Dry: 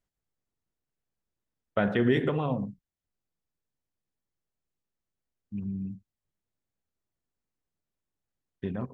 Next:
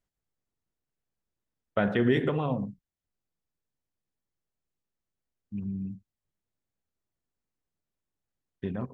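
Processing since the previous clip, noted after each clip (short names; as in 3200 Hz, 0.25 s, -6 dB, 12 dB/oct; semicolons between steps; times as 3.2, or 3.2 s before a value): nothing audible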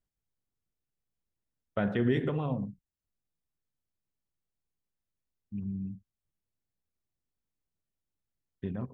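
low shelf 240 Hz +6.5 dB; gain -6 dB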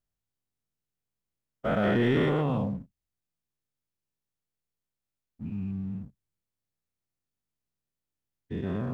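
spectral dilation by 0.24 s; sample leveller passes 1; gain -4 dB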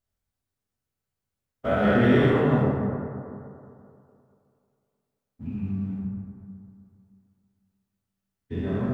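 reverb RT60 2.6 s, pre-delay 6 ms, DRR -3 dB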